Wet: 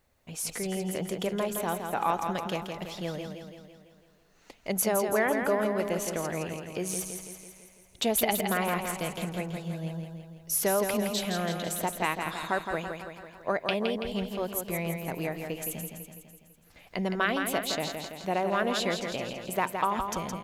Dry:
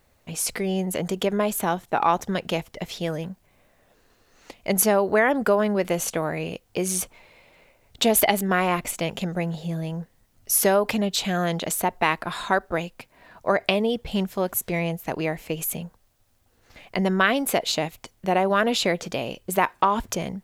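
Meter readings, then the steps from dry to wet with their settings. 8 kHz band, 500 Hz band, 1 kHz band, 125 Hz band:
-6.0 dB, -6.0 dB, -6.0 dB, -6.0 dB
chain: feedback delay 166 ms, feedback 57%, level -6 dB; trim -7.5 dB

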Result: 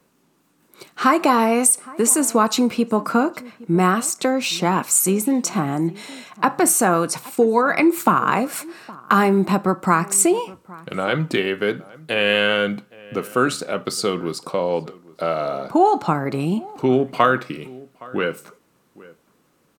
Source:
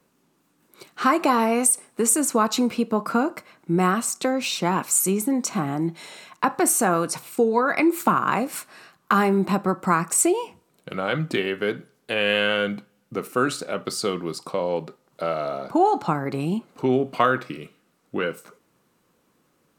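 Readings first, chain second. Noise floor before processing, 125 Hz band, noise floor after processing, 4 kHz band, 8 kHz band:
-67 dBFS, +3.5 dB, -62 dBFS, +3.5 dB, +3.5 dB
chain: echo from a far wall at 140 m, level -21 dB; trim +3.5 dB

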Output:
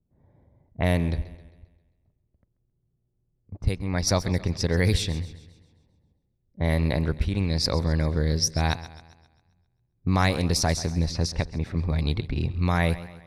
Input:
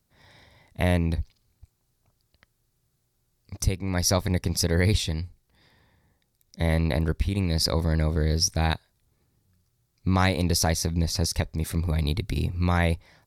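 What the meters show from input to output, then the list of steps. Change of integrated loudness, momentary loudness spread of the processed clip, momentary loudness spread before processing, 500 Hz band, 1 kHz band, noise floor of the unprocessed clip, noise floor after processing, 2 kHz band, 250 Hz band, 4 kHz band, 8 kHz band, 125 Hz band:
0.0 dB, 7 LU, 7 LU, 0.0 dB, 0.0 dB, -73 dBFS, -74 dBFS, 0.0 dB, 0.0 dB, -1.0 dB, -2.5 dB, 0.0 dB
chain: level-controlled noise filter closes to 420 Hz, open at -18 dBFS; modulated delay 133 ms, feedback 48%, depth 70 cents, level -16 dB

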